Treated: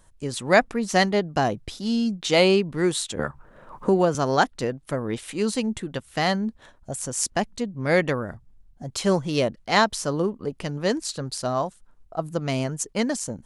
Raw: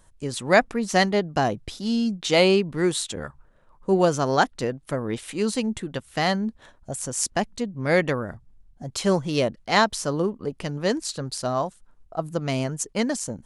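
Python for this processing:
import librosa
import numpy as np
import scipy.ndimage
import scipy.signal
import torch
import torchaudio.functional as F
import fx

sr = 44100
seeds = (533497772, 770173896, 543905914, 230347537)

y = fx.band_squash(x, sr, depth_pct=70, at=(3.19, 4.15))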